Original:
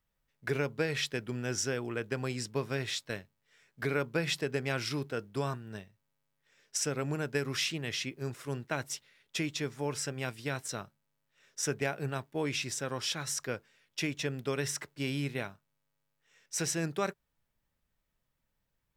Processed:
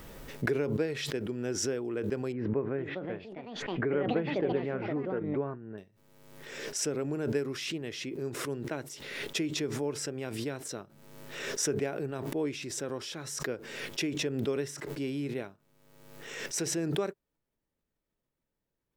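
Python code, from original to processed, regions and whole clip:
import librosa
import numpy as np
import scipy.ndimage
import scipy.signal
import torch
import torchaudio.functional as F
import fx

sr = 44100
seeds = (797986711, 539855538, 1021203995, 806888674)

y = fx.chain(x, sr, fx.lowpass(hz=2000.0, slope=24),
    fx.echo_pitch(ms=463, semitones=5, count=2, db_per_echo=-6.0), at=(2.32, 5.78))
y = fx.peak_eq(y, sr, hz=360.0, db=12.0, octaves=1.6)
y = fx.pre_swell(y, sr, db_per_s=41.0)
y = F.gain(torch.from_numpy(y), -8.0).numpy()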